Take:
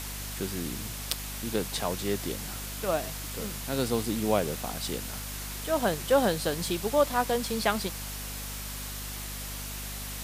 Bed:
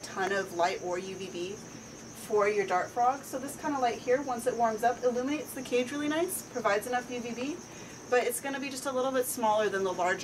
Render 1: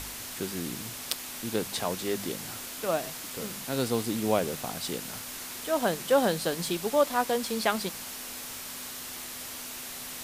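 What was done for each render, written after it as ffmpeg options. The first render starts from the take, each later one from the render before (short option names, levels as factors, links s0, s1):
-af "bandreject=f=50:t=h:w=4,bandreject=f=100:t=h:w=4,bandreject=f=150:t=h:w=4,bandreject=f=200:t=h:w=4"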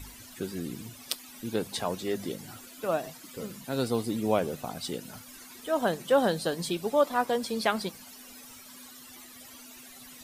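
-af "afftdn=nr=15:nf=-40"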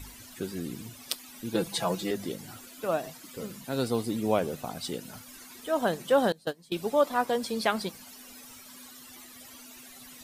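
-filter_complex "[0:a]asettb=1/sr,asplit=3[s0][s1][s2];[s0]atrim=end=1.544[s3];[s1]atrim=start=1.54:end=2.11,asetpts=PTS-STARTPTS,afade=t=in:d=0.004:c=qsin,afade=t=out:st=0.566:d=0.004:c=qsin,aecho=1:1:6:0.92,atrim=end_sample=25137[s4];[s2]atrim=start=2.106[s5];[s3][s4]acrossfade=d=0.004:c1=hsin:c2=qsin[s6];[s6][s5]acrossfade=d=0.004:c1=qsin:c2=hsin,asettb=1/sr,asplit=3[s7][s8][s9];[s7]atrim=end=6.324[s10];[s8]atrim=start=6.32:end=6.72,asetpts=PTS-STARTPTS,afade=t=in:d=0.004:c=qsin,afade=t=out:st=0.396:d=0.004:c=qsin,agate=range=0.0794:threshold=0.0398:ratio=16:release=100:detection=peak[s11];[s9]atrim=start=6.716[s12];[s10][s11]acrossfade=d=0.004:c1=hsin:c2=qsin[s13];[s13][s12]acrossfade=d=0.004:c1=qsin:c2=hsin"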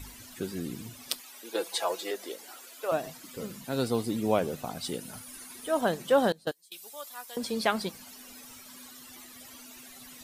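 -filter_complex "[0:a]asettb=1/sr,asplit=3[s0][s1][s2];[s0]atrim=end=1.204[s3];[s1]atrim=start=1.2:end=2.92,asetpts=PTS-STARTPTS,afade=t=in:d=0.004:c=qsin,afade=t=out:st=1.716:d=0.004:c=qsin,highpass=f=390:w=0.5412,highpass=f=390:w=1.3066[s4];[s2]atrim=start=2.916[s5];[s3][s4]acrossfade=d=0.004:c1=hsin:c2=qsin[s6];[s6][s5]acrossfade=d=0.004:c1=qsin:c2=hsin,asettb=1/sr,asplit=3[s7][s8][s9];[s7]atrim=end=4.864[s10];[s8]atrim=start=4.86:end=5.81,asetpts=PTS-STARTPTS,afade=t=in:d=0.004:c=qsin,afade=t=out:st=0.946:d=0.004:c=qsin,equalizer=f=9800:w=5.1:g=10.5[s11];[s9]atrim=start=5.806[s12];[s10][s11]acrossfade=d=0.004:c1=hsin:c2=qsin[s13];[s13][s12]acrossfade=d=0.004:c1=qsin:c2=hsin,asettb=1/sr,asplit=3[s14][s15][s16];[s14]atrim=end=6.514[s17];[s15]atrim=start=6.51:end=7.37,asetpts=PTS-STARTPTS,afade=t=in:d=0.004:c=qsin,afade=t=out:st=0.856:d=0.004:c=qsin,aderivative[s18];[s16]atrim=start=7.366[s19];[s17][s18]acrossfade=d=0.004:c1=hsin:c2=qsin[s20];[s20][s19]acrossfade=d=0.004:c1=qsin:c2=hsin"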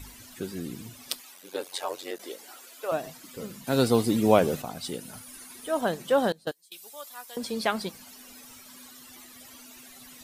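-filter_complex "[0:a]asplit=3[s0][s1][s2];[s0]afade=t=out:st=1.34:d=0.02[s3];[s1]aeval=exprs='val(0)*sin(2*PI*46*n/s)':c=same,afade=t=in:st=1.34:d=0.02,afade=t=out:st=2.18:d=0.02[s4];[s2]afade=t=in:st=2.18:d=0.02[s5];[s3][s4][s5]amix=inputs=3:normalize=0,asplit=3[s6][s7][s8];[s6]atrim=end=3.672[s9];[s7]atrim=start=3.668:end=4.622,asetpts=PTS-STARTPTS,volume=2.11[s10];[s8]atrim=start=4.618[s11];[s9][s10]acrossfade=d=0.004:c1=hsin:c2=hsin[s12];[s12][s11]acrossfade=d=0.004:c1=hsin:c2=hsin"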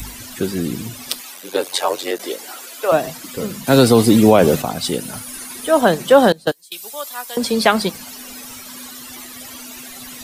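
-filter_complex "[0:a]acrossover=split=260|660|2500[s0][s1][s2][s3];[s3]acompressor=mode=upward:threshold=0.00224:ratio=2.5[s4];[s0][s1][s2][s4]amix=inputs=4:normalize=0,alimiter=level_in=4.73:limit=0.891:release=50:level=0:latency=1"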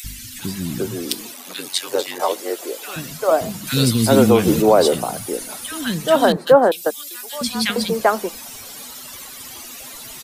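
-filter_complex "[0:a]acrossover=split=270|1700[s0][s1][s2];[s0]adelay=40[s3];[s1]adelay=390[s4];[s3][s4][s2]amix=inputs=3:normalize=0"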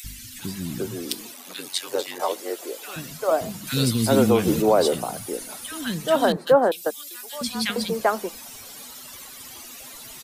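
-af "volume=0.562"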